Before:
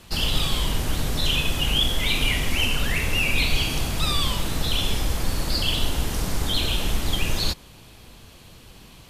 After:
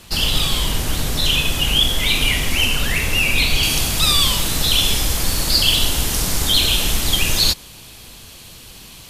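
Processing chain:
high-shelf EQ 2,700 Hz +5.5 dB, from 0:03.63 +11 dB
level +3 dB

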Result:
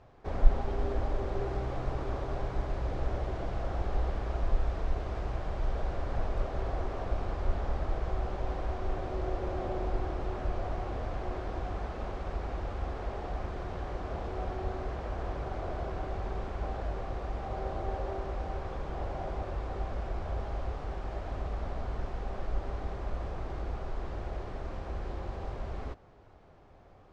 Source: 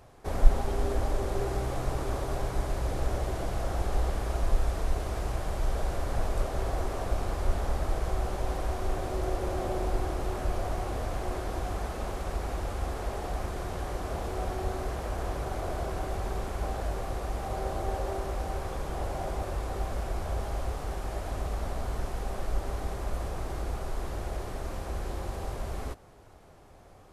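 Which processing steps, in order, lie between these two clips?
high-frequency loss of the air 170 metres
level −2.5 dB

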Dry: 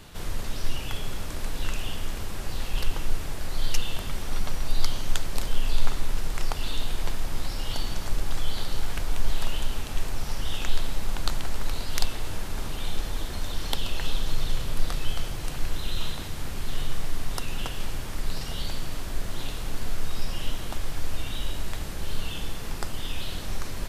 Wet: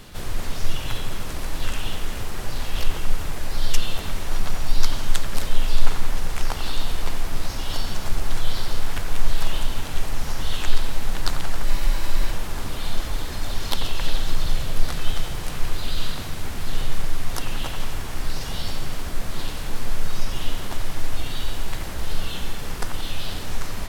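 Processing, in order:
delay with a band-pass on its return 88 ms, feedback 64%, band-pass 1,200 Hz, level −5.5 dB
pitch-shifted copies added +3 semitones −3 dB
frozen spectrum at 0:11.69, 0.62 s
level +1.5 dB

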